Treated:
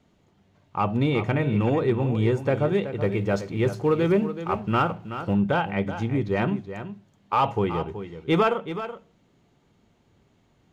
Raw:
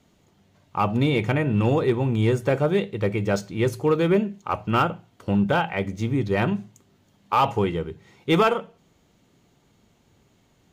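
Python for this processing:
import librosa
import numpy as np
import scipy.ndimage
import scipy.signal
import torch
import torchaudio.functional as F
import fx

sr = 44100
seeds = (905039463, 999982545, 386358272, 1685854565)

y = fx.law_mismatch(x, sr, coded='mu', at=(3.0, 5.34))
y = fx.lowpass(y, sr, hz=3200.0, slope=6)
y = y + 10.0 ** (-11.0 / 20.0) * np.pad(y, (int(376 * sr / 1000.0), 0))[:len(y)]
y = F.gain(torch.from_numpy(y), -1.5).numpy()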